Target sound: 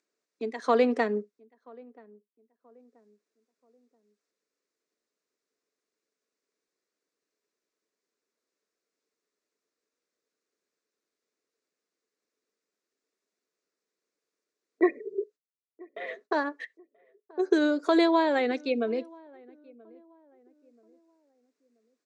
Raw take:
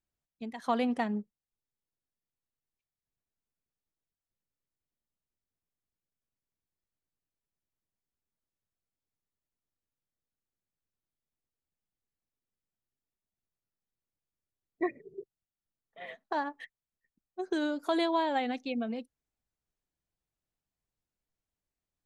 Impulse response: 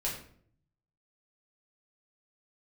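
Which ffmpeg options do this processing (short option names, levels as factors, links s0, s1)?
-filter_complex "[0:a]agate=range=0.001:threshold=0.00112:ratio=16:detection=peak,acompressor=mode=upward:threshold=0.00891:ratio=2.5,highpass=f=270:w=0.5412,highpass=f=270:w=1.3066,equalizer=f=440:t=q:w=4:g=9,equalizer=f=820:t=q:w=4:g=-10,equalizer=f=3100:t=q:w=4:g=-9,lowpass=f=7300:w=0.5412,lowpass=f=7300:w=1.3066,asplit=2[s0][s1];[s1]adelay=981,lowpass=f=900:p=1,volume=0.0631,asplit=2[s2][s3];[s3]adelay=981,lowpass=f=900:p=1,volume=0.4,asplit=2[s4][s5];[s5]adelay=981,lowpass=f=900:p=1,volume=0.4[s6];[s0][s2][s4][s6]amix=inputs=4:normalize=0,asplit=2[s7][s8];[1:a]atrim=start_sample=2205,atrim=end_sample=3969[s9];[s8][s9]afir=irnorm=-1:irlink=0,volume=0.0473[s10];[s7][s10]amix=inputs=2:normalize=0,volume=2.24"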